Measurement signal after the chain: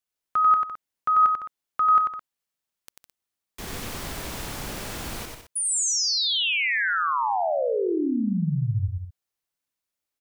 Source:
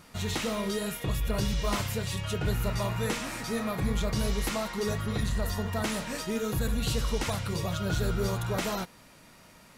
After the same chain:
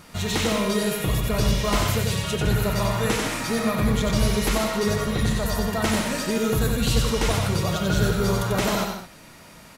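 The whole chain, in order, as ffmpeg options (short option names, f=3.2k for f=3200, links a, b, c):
-af "aecho=1:1:92|158|214:0.631|0.335|0.211,volume=6dB"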